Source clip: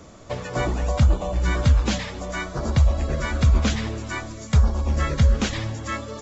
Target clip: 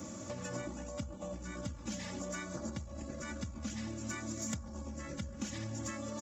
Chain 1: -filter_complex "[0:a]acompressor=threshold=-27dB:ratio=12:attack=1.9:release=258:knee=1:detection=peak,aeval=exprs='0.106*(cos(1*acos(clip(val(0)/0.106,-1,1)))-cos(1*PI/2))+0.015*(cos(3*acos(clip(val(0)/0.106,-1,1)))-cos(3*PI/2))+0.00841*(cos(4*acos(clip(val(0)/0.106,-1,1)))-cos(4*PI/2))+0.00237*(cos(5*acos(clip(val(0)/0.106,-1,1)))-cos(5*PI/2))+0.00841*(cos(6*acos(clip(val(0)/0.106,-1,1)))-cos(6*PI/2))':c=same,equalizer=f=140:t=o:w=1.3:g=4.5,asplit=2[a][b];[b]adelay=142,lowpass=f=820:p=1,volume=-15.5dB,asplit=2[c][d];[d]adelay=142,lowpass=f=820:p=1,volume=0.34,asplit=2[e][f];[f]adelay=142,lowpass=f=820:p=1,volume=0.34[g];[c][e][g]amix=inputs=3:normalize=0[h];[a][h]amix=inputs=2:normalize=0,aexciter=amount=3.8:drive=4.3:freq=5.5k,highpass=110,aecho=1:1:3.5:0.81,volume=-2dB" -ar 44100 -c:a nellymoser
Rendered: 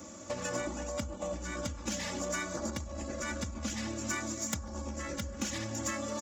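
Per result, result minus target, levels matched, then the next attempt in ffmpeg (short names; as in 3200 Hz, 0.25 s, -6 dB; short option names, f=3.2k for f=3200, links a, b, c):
compressor: peak gain reduction -7.5 dB; 125 Hz band -4.0 dB
-filter_complex "[0:a]acompressor=threshold=-35dB:ratio=12:attack=1.9:release=258:knee=1:detection=peak,aeval=exprs='0.106*(cos(1*acos(clip(val(0)/0.106,-1,1)))-cos(1*PI/2))+0.015*(cos(3*acos(clip(val(0)/0.106,-1,1)))-cos(3*PI/2))+0.00841*(cos(4*acos(clip(val(0)/0.106,-1,1)))-cos(4*PI/2))+0.00237*(cos(5*acos(clip(val(0)/0.106,-1,1)))-cos(5*PI/2))+0.00841*(cos(6*acos(clip(val(0)/0.106,-1,1)))-cos(6*PI/2))':c=same,equalizer=f=140:t=o:w=1.3:g=4.5,asplit=2[a][b];[b]adelay=142,lowpass=f=820:p=1,volume=-15.5dB,asplit=2[c][d];[d]adelay=142,lowpass=f=820:p=1,volume=0.34,asplit=2[e][f];[f]adelay=142,lowpass=f=820:p=1,volume=0.34[g];[c][e][g]amix=inputs=3:normalize=0[h];[a][h]amix=inputs=2:normalize=0,aexciter=amount=3.8:drive=4.3:freq=5.5k,highpass=110,aecho=1:1:3.5:0.81,volume=-2dB" -ar 44100 -c:a nellymoser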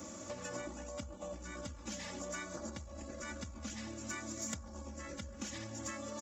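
125 Hz band -4.0 dB
-filter_complex "[0:a]acompressor=threshold=-35dB:ratio=12:attack=1.9:release=258:knee=1:detection=peak,aeval=exprs='0.106*(cos(1*acos(clip(val(0)/0.106,-1,1)))-cos(1*PI/2))+0.015*(cos(3*acos(clip(val(0)/0.106,-1,1)))-cos(3*PI/2))+0.00841*(cos(4*acos(clip(val(0)/0.106,-1,1)))-cos(4*PI/2))+0.00237*(cos(5*acos(clip(val(0)/0.106,-1,1)))-cos(5*PI/2))+0.00841*(cos(6*acos(clip(val(0)/0.106,-1,1)))-cos(6*PI/2))':c=same,equalizer=f=140:t=o:w=1.3:g=15,asplit=2[a][b];[b]adelay=142,lowpass=f=820:p=1,volume=-15.5dB,asplit=2[c][d];[d]adelay=142,lowpass=f=820:p=1,volume=0.34,asplit=2[e][f];[f]adelay=142,lowpass=f=820:p=1,volume=0.34[g];[c][e][g]amix=inputs=3:normalize=0[h];[a][h]amix=inputs=2:normalize=0,aexciter=amount=3.8:drive=4.3:freq=5.5k,highpass=110,aecho=1:1:3.5:0.81,volume=-2dB" -ar 44100 -c:a nellymoser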